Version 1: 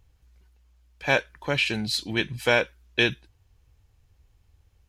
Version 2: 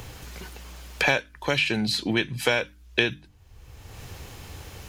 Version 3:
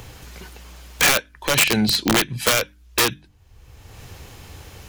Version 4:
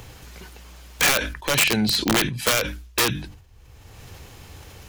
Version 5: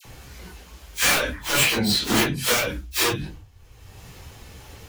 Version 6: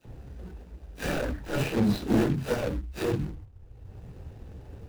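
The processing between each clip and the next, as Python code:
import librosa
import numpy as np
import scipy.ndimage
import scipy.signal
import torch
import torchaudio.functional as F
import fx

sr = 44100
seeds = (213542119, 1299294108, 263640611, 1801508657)

y1 = fx.hum_notches(x, sr, base_hz=50, count=6)
y1 = fx.band_squash(y1, sr, depth_pct=100)
y2 = (np.mod(10.0 ** (16.5 / 20.0) * y1 + 1.0, 2.0) - 1.0) / 10.0 ** (16.5 / 20.0)
y2 = fx.upward_expand(y2, sr, threshold_db=-38.0, expansion=1.5)
y2 = y2 * librosa.db_to_amplitude(8.5)
y3 = fx.sustainer(y2, sr, db_per_s=83.0)
y3 = y3 * librosa.db_to_amplitude(-2.5)
y4 = fx.phase_scramble(y3, sr, seeds[0], window_ms=100)
y4 = fx.dispersion(y4, sr, late='lows', ms=51.0, hz=1400.0)
y5 = scipy.signal.medfilt(y4, 41)
y5 = y5 * librosa.db_to_amplitude(1.0)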